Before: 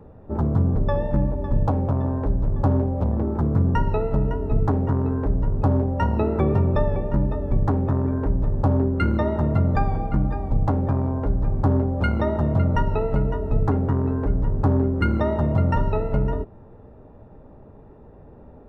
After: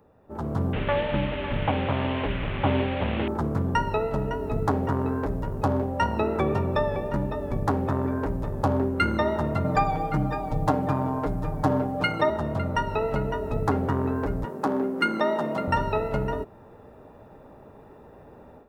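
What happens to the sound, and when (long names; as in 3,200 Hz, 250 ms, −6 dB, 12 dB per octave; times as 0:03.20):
0:00.73–0:03.28: linear delta modulator 16 kbit/s, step −30.5 dBFS
0:09.64–0:12.30: comb filter 6.6 ms, depth 93%
0:14.45–0:15.68: high-pass filter 190 Hz 24 dB per octave
whole clip: spectral tilt +3 dB per octave; automatic gain control gain up to 11.5 dB; level −7.5 dB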